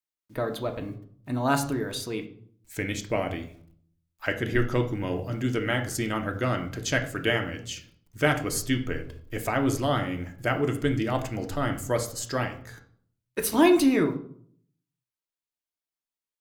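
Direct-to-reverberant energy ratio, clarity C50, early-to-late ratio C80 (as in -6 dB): 4.0 dB, 11.0 dB, 15.0 dB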